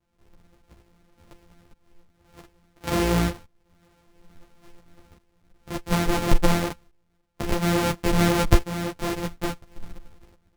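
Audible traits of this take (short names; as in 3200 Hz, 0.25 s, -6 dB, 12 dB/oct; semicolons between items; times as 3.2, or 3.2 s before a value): a buzz of ramps at a fixed pitch in blocks of 256 samples; tremolo saw up 0.58 Hz, depth 80%; a shimmering, thickened sound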